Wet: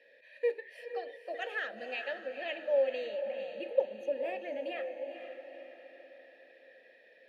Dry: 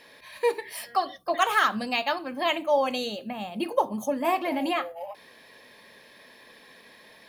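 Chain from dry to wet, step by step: vowel filter e; echo that smears into a reverb 478 ms, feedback 48%, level -8 dB

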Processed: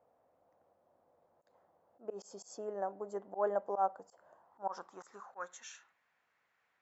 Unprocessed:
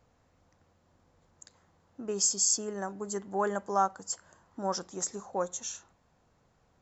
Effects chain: slow attack 101 ms; band-pass sweep 630 Hz -> 2 kHz, 4.22–5.73 s; trim +3.5 dB

